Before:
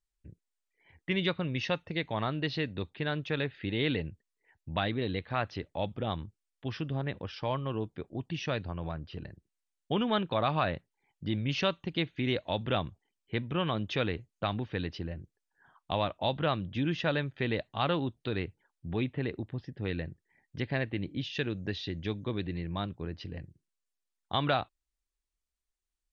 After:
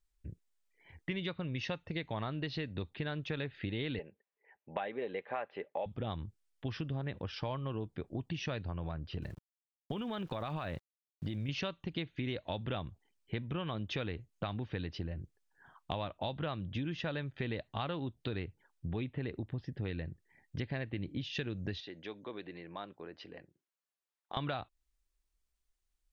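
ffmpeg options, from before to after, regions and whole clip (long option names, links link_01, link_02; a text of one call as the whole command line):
ffmpeg -i in.wav -filter_complex "[0:a]asettb=1/sr,asplit=3[link_01][link_02][link_03];[link_01]atrim=end=3.994[link_04];[link_02]atrim=start=3.99:end=5.86,asetpts=PTS-STARTPTS,afade=type=in:duration=0.004:curve=qsin,afade=type=out:start_time=1.866:duration=0.004:curve=qsin,highpass=420,equalizer=frequency=500:width_type=q:width=4:gain=9,equalizer=frequency=790:width_type=q:width=4:gain=4,equalizer=frequency=1300:width_type=q:width=4:gain=-4,lowpass=frequency=2600:width=0.5412,lowpass=frequency=2600:width=1.3066,aecho=1:1:5:0.36,atrim=end_sample=82467[link_05];[link_03]atrim=start=5.856[link_06];[link_04][link_05]acrossfade=duration=0.004:curve1=hsin:curve2=qsin[link_07];[link_07][link_06]acrossfade=duration=0.004:curve1=qsin:curve2=hsin,asettb=1/sr,asplit=3[link_08][link_09][link_10];[link_08]atrim=end=9.224[link_11];[link_09]atrim=start=9.22:end=11.49,asetpts=PTS-STARTPTS,afade=type=in:duration=0.004:curve=qsin,afade=type=out:start_time=2.266:duration=0.004:curve=qsin,acompressor=threshold=-32dB:ratio=6:attack=3.2:release=140:knee=1:detection=peak,aeval=exprs='val(0)*gte(abs(val(0)),0.00141)':channel_layout=same[link_12];[link_10]atrim=start=11.486[link_13];[link_11][link_12]acrossfade=duration=0.004:curve1=hsin:curve2=qsin[link_14];[link_14][link_13]acrossfade=duration=0.004:curve1=qsin:curve2=hsin,asettb=1/sr,asplit=3[link_15][link_16][link_17];[link_15]atrim=end=21.804[link_18];[link_16]atrim=start=21.8:end=24.37,asetpts=PTS-STARTPTS,afade=type=in:duration=0.004:curve=qsin,afade=type=out:start_time=2.566:duration=0.004:curve=qsin,highpass=450,highshelf=frequency=3000:gain=-9.5,acompressor=threshold=-50dB:ratio=1.5:attack=3.2:release=140:knee=1:detection=peak[link_19];[link_17]atrim=start=24.366[link_20];[link_18][link_19]acrossfade=duration=0.004:curve1=hsin:curve2=qsin[link_21];[link_21][link_20]acrossfade=duration=0.004:curve1=qsin:curve2=hsin,lowshelf=frequency=91:gain=7,acompressor=threshold=-37dB:ratio=5,volume=2dB" out.wav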